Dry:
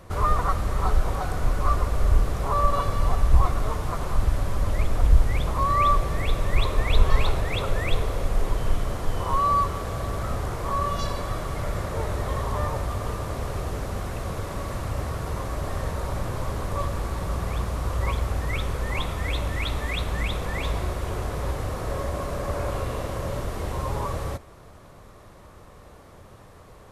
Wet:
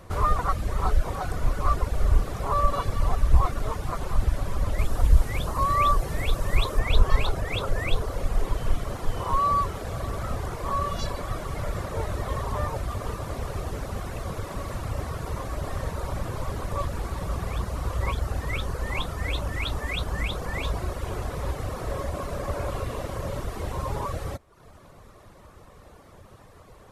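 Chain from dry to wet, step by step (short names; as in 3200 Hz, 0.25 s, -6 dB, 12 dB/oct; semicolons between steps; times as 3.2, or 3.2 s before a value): reverb removal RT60 0.7 s; 4.78–6.79 high shelf 7200 Hz +7 dB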